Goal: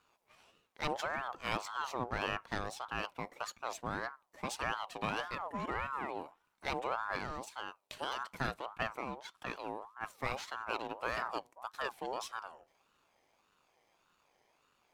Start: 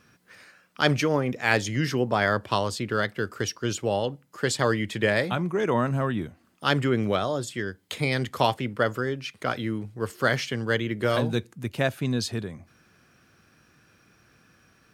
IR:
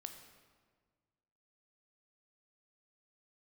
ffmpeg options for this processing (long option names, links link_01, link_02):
-af "aeval=exprs='if(lt(val(0),0),0.447*val(0),val(0))':channel_layout=same,aeval=exprs='val(0)*sin(2*PI*920*n/s+920*0.35/1.7*sin(2*PI*1.7*n/s))':channel_layout=same,volume=-8.5dB"